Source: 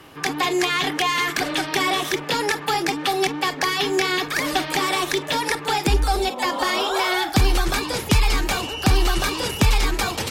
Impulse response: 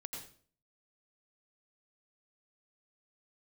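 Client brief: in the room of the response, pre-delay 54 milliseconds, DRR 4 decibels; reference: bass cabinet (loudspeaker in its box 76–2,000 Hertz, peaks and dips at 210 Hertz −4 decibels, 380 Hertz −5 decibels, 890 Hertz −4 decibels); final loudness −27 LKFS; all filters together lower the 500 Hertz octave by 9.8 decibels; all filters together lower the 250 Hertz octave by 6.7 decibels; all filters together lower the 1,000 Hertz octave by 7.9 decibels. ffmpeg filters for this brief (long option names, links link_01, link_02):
-filter_complex "[0:a]equalizer=frequency=250:width_type=o:gain=-3,equalizer=frequency=500:width_type=o:gain=-6.5,equalizer=frequency=1000:width_type=o:gain=-5.5,asplit=2[link_01][link_02];[1:a]atrim=start_sample=2205,adelay=54[link_03];[link_02][link_03]afir=irnorm=-1:irlink=0,volume=-1.5dB[link_04];[link_01][link_04]amix=inputs=2:normalize=0,highpass=frequency=76:width=0.5412,highpass=frequency=76:width=1.3066,equalizer=frequency=210:width_type=q:width=4:gain=-4,equalizer=frequency=380:width_type=q:width=4:gain=-5,equalizer=frequency=890:width_type=q:width=4:gain=-4,lowpass=frequency=2000:width=0.5412,lowpass=frequency=2000:width=1.3066,volume=0.5dB"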